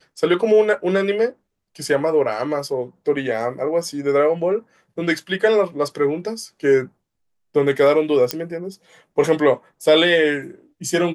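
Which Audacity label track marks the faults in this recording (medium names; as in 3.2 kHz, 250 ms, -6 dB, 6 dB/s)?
8.310000	8.310000	pop -4 dBFS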